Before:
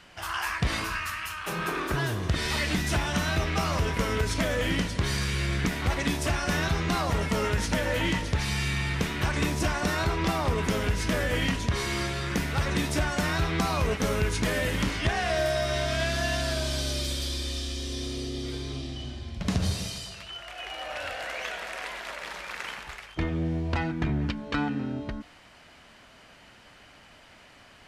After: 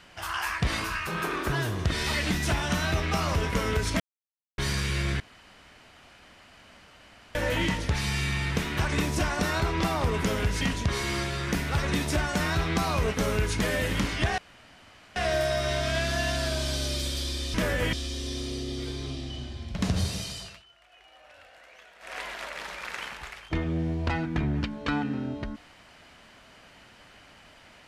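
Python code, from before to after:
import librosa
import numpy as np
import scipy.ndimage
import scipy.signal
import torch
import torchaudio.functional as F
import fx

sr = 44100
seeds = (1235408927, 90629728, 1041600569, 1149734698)

y = fx.edit(x, sr, fx.cut(start_s=1.07, length_s=0.44),
    fx.silence(start_s=4.44, length_s=0.58),
    fx.room_tone_fill(start_s=5.64, length_s=2.15),
    fx.move(start_s=11.05, length_s=0.39, to_s=17.59),
    fx.insert_room_tone(at_s=15.21, length_s=0.78),
    fx.fade_down_up(start_s=20.11, length_s=1.73, db=-18.0, fade_s=0.19), tone=tone)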